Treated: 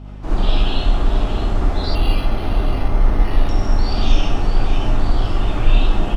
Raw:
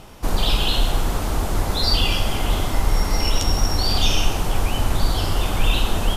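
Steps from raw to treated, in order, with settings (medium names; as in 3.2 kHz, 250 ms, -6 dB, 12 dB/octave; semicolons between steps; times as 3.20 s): tape spacing loss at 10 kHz 22 dB; delay 629 ms -9.5 dB; gated-style reverb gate 90 ms rising, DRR -5.5 dB; hum 50 Hz, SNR 20 dB; 1.95–3.49 s: decimation joined by straight lines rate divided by 6×; trim -4.5 dB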